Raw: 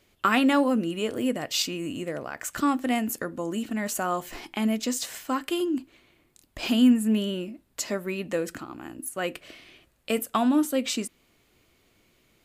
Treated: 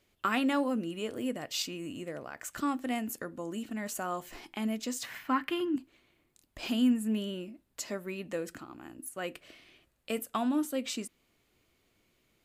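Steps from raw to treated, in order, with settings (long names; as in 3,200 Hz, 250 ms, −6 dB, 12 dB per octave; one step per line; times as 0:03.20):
0:05.03–0:05.76: octave-band graphic EQ 125/250/500/1,000/2,000/8,000 Hz +8/+5/−4/+6/+10/−12 dB
level −7.5 dB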